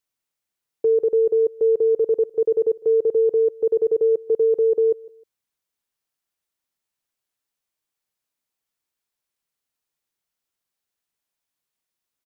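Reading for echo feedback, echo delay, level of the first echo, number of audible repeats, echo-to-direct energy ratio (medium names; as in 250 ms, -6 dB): 30%, 155 ms, -22.0 dB, 2, -21.5 dB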